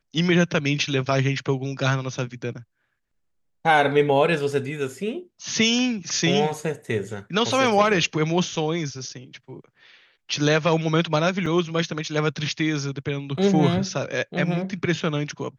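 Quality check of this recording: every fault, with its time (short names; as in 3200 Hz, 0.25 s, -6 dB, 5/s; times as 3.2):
11.46 gap 4 ms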